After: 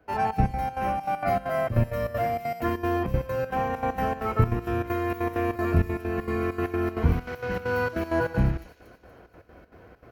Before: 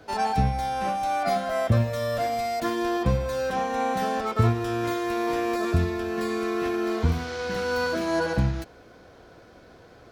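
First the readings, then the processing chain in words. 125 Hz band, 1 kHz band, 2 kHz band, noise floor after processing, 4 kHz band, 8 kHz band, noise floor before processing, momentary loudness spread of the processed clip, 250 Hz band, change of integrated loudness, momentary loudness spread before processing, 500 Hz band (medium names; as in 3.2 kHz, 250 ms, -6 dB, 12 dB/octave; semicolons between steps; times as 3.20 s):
-0.5 dB, -1.5 dB, -1.5 dB, -54 dBFS, -10.0 dB, under -10 dB, -51 dBFS, 4 LU, -1.0 dB, -1.0 dB, 4 LU, -1.5 dB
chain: octave divider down 2 oct, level 0 dB; high-pass 44 Hz; high-order bell 5.8 kHz -12.5 dB; band-stop 3.5 kHz, Q 22; trance gate ".xxx.x.xx" 196 bpm -12 dB; on a send: feedback echo behind a high-pass 237 ms, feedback 48%, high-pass 4.6 kHz, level -5 dB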